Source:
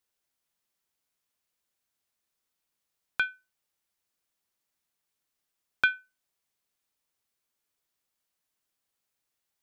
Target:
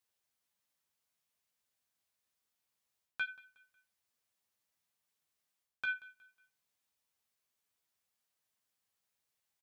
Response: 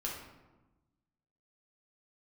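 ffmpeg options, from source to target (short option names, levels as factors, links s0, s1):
-filter_complex "[0:a]bandreject=f=1400:w=28,areverse,acompressor=threshold=0.0251:ratio=6,areverse,highpass=47,equalizer=f=340:w=2.6:g=-5,asplit=2[s0][s1];[s1]aecho=0:1:182|364|546:0.0841|0.0311|0.0115[s2];[s0][s2]amix=inputs=2:normalize=0,flanger=delay=8.4:depth=8.9:regen=-22:speed=0.24:shape=triangular,volume=1.19"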